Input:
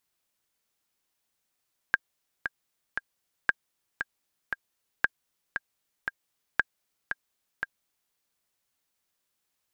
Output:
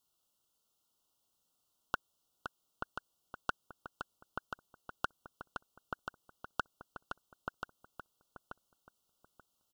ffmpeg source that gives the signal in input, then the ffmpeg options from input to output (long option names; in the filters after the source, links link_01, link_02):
-f lavfi -i "aevalsrc='pow(10,(-8-8*gte(mod(t,3*60/116),60/116))/20)*sin(2*PI*1610*mod(t,60/116))*exp(-6.91*mod(t,60/116)/0.03)':duration=6.2:sample_rate=44100"
-filter_complex "[0:a]asuperstop=centerf=2000:order=20:qfactor=1.6,asplit=2[link_01][link_02];[link_02]adelay=883,lowpass=frequency=1200:poles=1,volume=-3dB,asplit=2[link_03][link_04];[link_04]adelay=883,lowpass=frequency=1200:poles=1,volume=0.28,asplit=2[link_05][link_06];[link_06]adelay=883,lowpass=frequency=1200:poles=1,volume=0.28,asplit=2[link_07][link_08];[link_08]adelay=883,lowpass=frequency=1200:poles=1,volume=0.28[link_09];[link_01][link_03][link_05][link_07][link_09]amix=inputs=5:normalize=0"